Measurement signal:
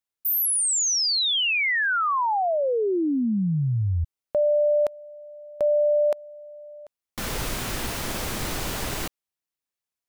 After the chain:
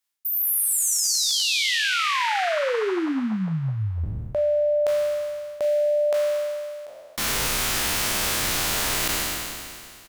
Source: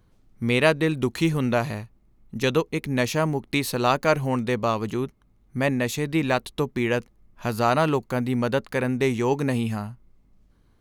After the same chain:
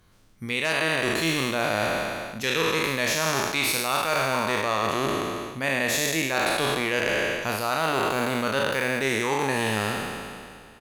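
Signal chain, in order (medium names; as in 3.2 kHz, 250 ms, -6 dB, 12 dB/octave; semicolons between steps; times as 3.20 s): spectral sustain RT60 2.20 s; one-sided clip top -8.5 dBFS, bottom -6 dBFS; tilt shelf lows -5.5 dB, about 880 Hz; reverse; compression 10:1, threshold -23 dBFS; reverse; doubling 37 ms -12 dB; trim +2.5 dB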